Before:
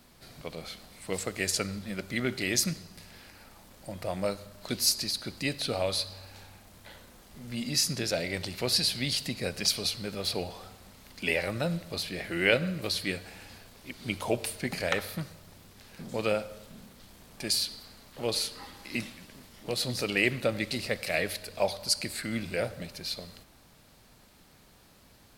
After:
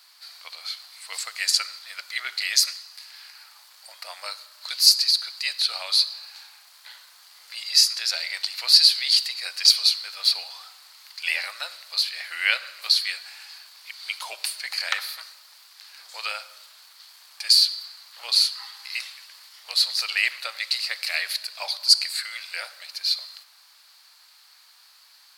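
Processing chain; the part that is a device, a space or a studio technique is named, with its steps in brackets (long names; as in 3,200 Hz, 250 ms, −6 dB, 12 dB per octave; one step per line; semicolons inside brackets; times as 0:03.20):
headphones lying on a table (high-pass filter 1,000 Hz 24 dB per octave; parametric band 4,500 Hz +11 dB 0.38 octaves)
level +4 dB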